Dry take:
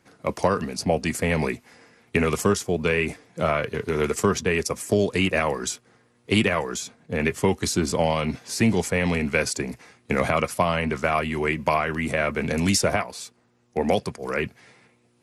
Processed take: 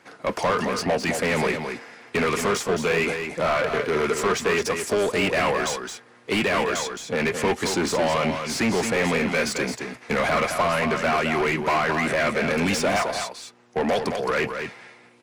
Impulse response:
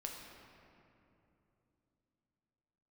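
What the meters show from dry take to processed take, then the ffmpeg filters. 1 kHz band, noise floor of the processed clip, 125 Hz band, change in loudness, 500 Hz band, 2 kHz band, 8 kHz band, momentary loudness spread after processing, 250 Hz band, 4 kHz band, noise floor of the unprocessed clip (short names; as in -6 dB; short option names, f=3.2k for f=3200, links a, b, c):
+2.5 dB, -52 dBFS, -4.5 dB, +0.5 dB, +1.0 dB, +2.5 dB, -1.0 dB, 7 LU, -1.5 dB, +2.0 dB, -63 dBFS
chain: -filter_complex "[0:a]asplit=2[a][b];[b]highpass=f=720:p=1,volume=27dB,asoftclip=type=tanh:threshold=-5.5dB[c];[a][c]amix=inputs=2:normalize=0,lowpass=f=2.7k:p=1,volume=-6dB,aecho=1:1:217:0.447,volume=-8dB"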